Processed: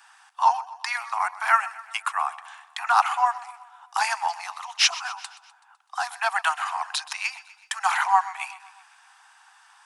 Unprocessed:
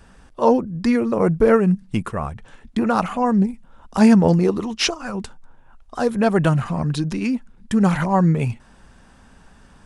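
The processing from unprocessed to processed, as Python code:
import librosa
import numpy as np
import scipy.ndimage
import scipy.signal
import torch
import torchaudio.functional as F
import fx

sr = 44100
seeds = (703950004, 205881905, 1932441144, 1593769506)

p1 = scipy.signal.sosfilt(scipy.signal.butter(16, 750.0, 'highpass', fs=sr, output='sos'), x)
p2 = fx.rider(p1, sr, range_db=4, speed_s=2.0)
p3 = p2 + fx.echo_feedback(p2, sr, ms=126, feedback_pct=56, wet_db=-17.5, dry=0)
y = p3 * 10.0 ** (3.5 / 20.0)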